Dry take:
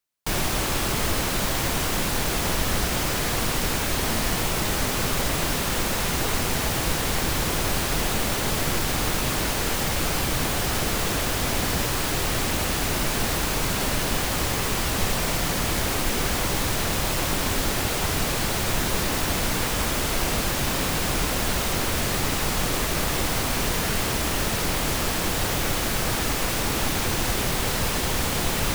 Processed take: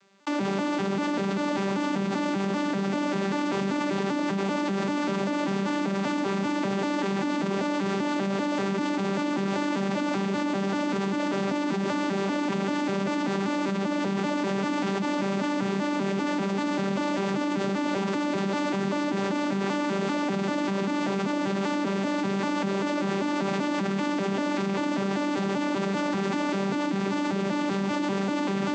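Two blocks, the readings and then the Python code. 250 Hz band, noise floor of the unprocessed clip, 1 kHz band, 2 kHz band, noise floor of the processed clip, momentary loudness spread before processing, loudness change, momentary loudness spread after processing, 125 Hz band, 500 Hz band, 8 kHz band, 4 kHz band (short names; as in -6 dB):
+5.0 dB, -26 dBFS, -1.5 dB, -5.0 dB, -28 dBFS, 0 LU, -3.5 dB, 0 LU, -6.0 dB, +1.0 dB, -18.5 dB, -11.0 dB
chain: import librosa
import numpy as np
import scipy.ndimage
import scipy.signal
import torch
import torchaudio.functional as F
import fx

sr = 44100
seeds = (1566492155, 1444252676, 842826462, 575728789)

y = fx.vocoder_arp(x, sr, chord='bare fifth', root=55, every_ms=195)
y = fx.high_shelf(y, sr, hz=5400.0, db=-9.0)
y = fx.echo_bbd(y, sr, ms=193, stages=1024, feedback_pct=72, wet_db=-14.5)
y = fx.env_flatten(y, sr, amount_pct=100)
y = y * 10.0 ** (-6.0 / 20.0)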